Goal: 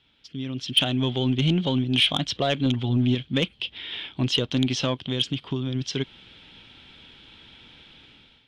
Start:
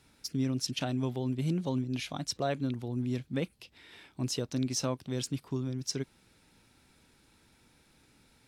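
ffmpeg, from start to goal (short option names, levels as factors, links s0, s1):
-filter_complex "[0:a]asettb=1/sr,asplit=3[s0][s1][s2];[s0]atrim=end=2.654[s3];[s1]atrim=start=2.65:end=3.15,asetpts=PTS-STARTPTS,afade=t=in:d=0.004:c=qsin,afade=t=out:st=0.496:d=0.004:c=qsin,aecho=1:1:7.4:0.88,atrim=end_sample=22050[s4];[s2]atrim=start=3.146[s5];[s3][s4]acrossfade=d=0.004:c1=hsin:c2=qsin[s6];[s6][s5]acrossfade=d=0.004:c1=qsin:c2=hsin,asplit=3[s7][s8][s9];[s7]afade=t=out:st=5.01:d=0.02[s10];[s8]acompressor=threshold=0.02:ratio=4,afade=t=in:st=5.01:d=0.02,afade=t=out:st=5.74:d=0.02[s11];[s9]afade=t=in:st=5.74:d=0.02[s12];[s10][s11][s12]amix=inputs=3:normalize=0,alimiter=limit=0.075:level=0:latency=1:release=252,dynaudnorm=f=270:g=5:m=5.62,lowpass=f=3200:t=q:w=9.3,asoftclip=type=tanh:threshold=0.501,volume=0.562"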